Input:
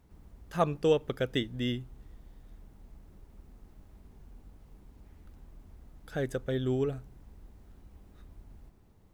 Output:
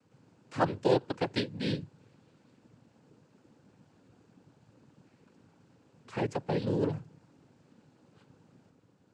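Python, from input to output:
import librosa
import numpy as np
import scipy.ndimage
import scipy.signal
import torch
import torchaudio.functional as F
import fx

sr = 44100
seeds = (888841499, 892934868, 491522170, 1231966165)

y = fx.noise_vocoder(x, sr, seeds[0], bands=8)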